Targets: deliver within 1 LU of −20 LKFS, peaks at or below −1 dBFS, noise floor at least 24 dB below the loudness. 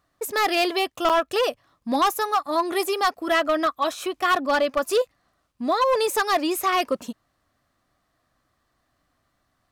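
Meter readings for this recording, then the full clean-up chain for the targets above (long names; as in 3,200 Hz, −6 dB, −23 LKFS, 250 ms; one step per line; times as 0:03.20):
share of clipped samples 1.6%; peaks flattened at −15.0 dBFS; number of dropouts 1; longest dropout 7.2 ms; integrated loudness −23.0 LKFS; sample peak −15.0 dBFS; target loudness −20.0 LKFS
→ clipped peaks rebuilt −15 dBFS
repair the gap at 0:01.09, 7.2 ms
level +3 dB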